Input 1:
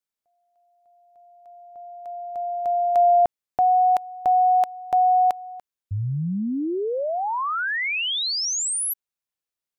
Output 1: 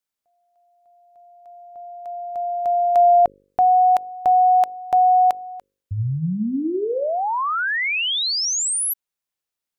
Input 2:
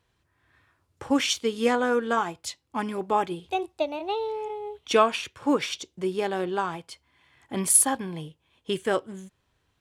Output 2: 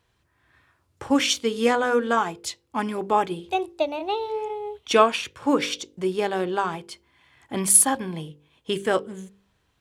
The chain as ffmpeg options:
ffmpeg -i in.wav -af "bandreject=frequency=49.23:width_type=h:width=4,bandreject=frequency=98.46:width_type=h:width=4,bandreject=frequency=147.69:width_type=h:width=4,bandreject=frequency=196.92:width_type=h:width=4,bandreject=frequency=246.15:width_type=h:width=4,bandreject=frequency=295.38:width_type=h:width=4,bandreject=frequency=344.61:width_type=h:width=4,bandreject=frequency=393.84:width_type=h:width=4,bandreject=frequency=443.07:width_type=h:width=4,bandreject=frequency=492.3:width_type=h:width=4,bandreject=frequency=541.53:width_type=h:width=4,volume=3dB" out.wav

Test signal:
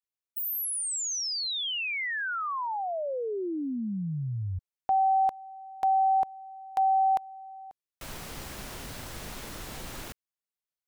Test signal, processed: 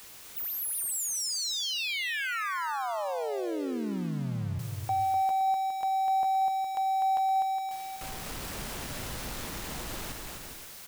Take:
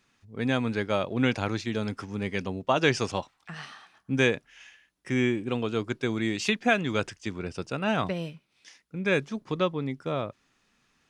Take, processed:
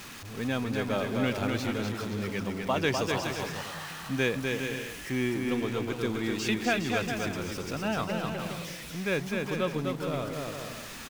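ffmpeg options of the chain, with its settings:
ffmpeg -i in.wav -af "aeval=exprs='val(0)+0.5*0.0224*sgn(val(0))':channel_layout=same,aecho=1:1:250|412.5|518.1|586.8|631.4:0.631|0.398|0.251|0.158|0.1,volume=-5.5dB" out.wav

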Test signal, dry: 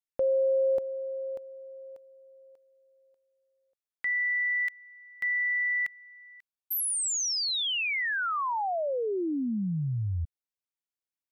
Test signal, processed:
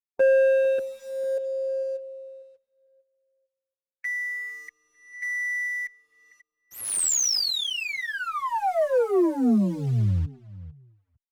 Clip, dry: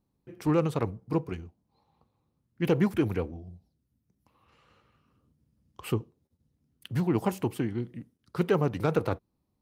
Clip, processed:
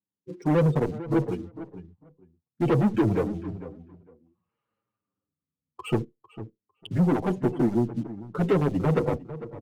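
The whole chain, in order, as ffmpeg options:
ffmpeg -i in.wav -filter_complex "[0:a]highpass=130,afftdn=noise_reduction=30:noise_floor=-39,lowpass=frequency=9000:width=0.5412,lowpass=frequency=9000:width=1.3066,acrossover=split=670|5300[link_01][link_02][link_03];[link_02]acompressor=threshold=-46dB:ratio=4:attack=3:release=652:knee=1:detection=peak[link_04];[link_01][link_04][link_03]amix=inputs=3:normalize=0,acrusher=bits=6:mode=log:mix=0:aa=0.000001,aeval=exprs='0.188*(cos(1*acos(clip(val(0)/0.188,-1,1)))-cos(1*PI/2))+0.0266*(cos(5*acos(clip(val(0)/0.188,-1,1)))-cos(5*PI/2))+0.00168*(cos(6*acos(clip(val(0)/0.188,-1,1)))-cos(6*PI/2))':channel_layout=same,apsyclip=19dB,adynamicsmooth=sensitivity=8:basefreq=2800,asoftclip=type=tanh:threshold=-6dB,asplit=2[link_05][link_06];[link_06]adelay=451,lowpass=frequency=1900:poles=1,volume=-14dB,asplit=2[link_07][link_08];[link_08]adelay=451,lowpass=frequency=1900:poles=1,volume=0.17[link_09];[link_05][link_07][link_09]amix=inputs=3:normalize=0,asplit=2[link_10][link_11];[link_11]adelay=7,afreqshift=-0.6[link_12];[link_10][link_12]amix=inputs=2:normalize=1,volume=-9dB" out.wav

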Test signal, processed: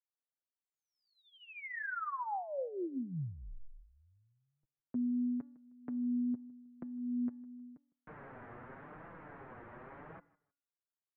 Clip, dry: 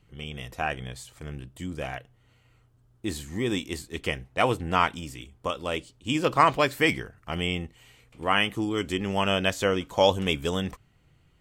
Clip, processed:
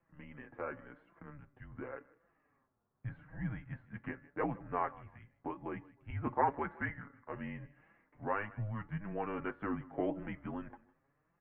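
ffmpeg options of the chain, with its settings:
ffmpeg -i in.wav -filter_complex "[0:a]highpass=frequency=300:width_type=q:width=0.5412,highpass=frequency=300:width_type=q:width=1.307,lowpass=frequency=2000:width_type=q:width=0.5176,lowpass=frequency=2000:width_type=q:width=0.7071,lowpass=frequency=2000:width_type=q:width=1.932,afreqshift=-210,aecho=1:1:156|312:0.0708|0.0163,asplit=2[link_01][link_02];[link_02]acompressor=threshold=-40dB:ratio=6,volume=2.5dB[link_03];[link_01][link_03]amix=inputs=2:normalize=0,flanger=delay=5.8:depth=2.8:regen=14:speed=0.88:shape=triangular,bandreject=frequency=285.8:width_type=h:width=4,bandreject=frequency=571.6:width_type=h:width=4,bandreject=frequency=857.4:width_type=h:width=4,bandreject=frequency=1143.2:width_type=h:width=4,bandreject=frequency=1429:width_type=h:width=4,bandreject=frequency=1714.8:width_type=h:width=4,bandreject=frequency=2000.6:width_type=h:width=4,volume=-9dB" out.wav

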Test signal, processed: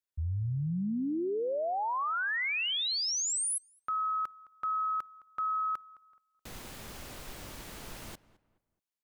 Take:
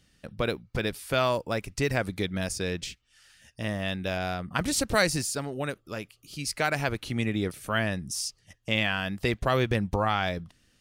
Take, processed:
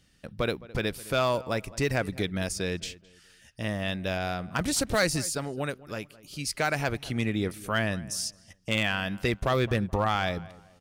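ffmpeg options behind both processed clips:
ffmpeg -i in.wav -filter_complex "[0:a]asoftclip=type=hard:threshold=-17dB,asplit=2[link_01][link_02];[link_02]adelay=213,lowpass=frequency=2100:poles=1,volume=-19dB,asplit=2[link_03][link_04];[link_04]adelay=213,lowpass=frequency=2100:poles=1,volume=0.34,asplit=2[link_05][link_06];[link_06]adelay=213,lowpass=frequency=2100:poles=1,volume=0.34[link_07];[link_01][link_03][link_05][link_07]amix=inputs=4:normalize=0" out.wav

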